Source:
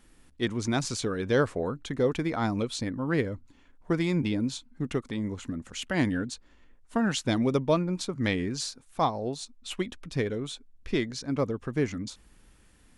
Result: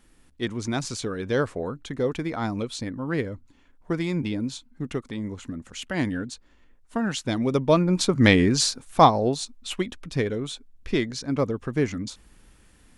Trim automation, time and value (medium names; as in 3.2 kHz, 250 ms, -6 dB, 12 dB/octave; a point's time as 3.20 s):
7.38 s 0 dB
8.10 s +11 dB
9.03 s +11 dB
9.83 s +3.5 dB